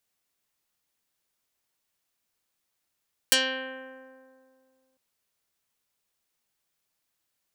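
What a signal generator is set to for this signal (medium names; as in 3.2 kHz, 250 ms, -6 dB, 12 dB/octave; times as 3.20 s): plucked string C4, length 1.65 s, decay 2.31 s, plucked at 0.21, dark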